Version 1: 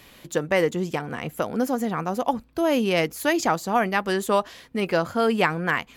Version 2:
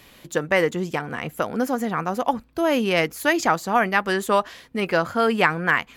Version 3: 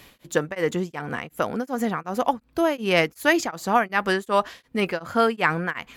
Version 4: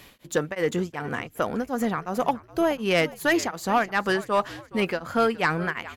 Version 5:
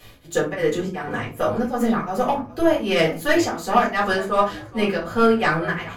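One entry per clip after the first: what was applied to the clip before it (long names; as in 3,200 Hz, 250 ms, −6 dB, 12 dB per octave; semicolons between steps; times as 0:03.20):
dynamic equaliser 1,600 Hz, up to +5 dB, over −37 dBFS, Q 0.9
tremolo along a rectified sine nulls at 2.7 Hz; level +1.5 dB
echo with shifted repeats 418 ms, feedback 38%, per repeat −67 Hz, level −19 dB; soft clipping −12.5 dBFS, distortion −15 dB
convolution reverb RT60 0.30 s, pre-delay 4 ms, DRR −6 dB; level −5.5 dB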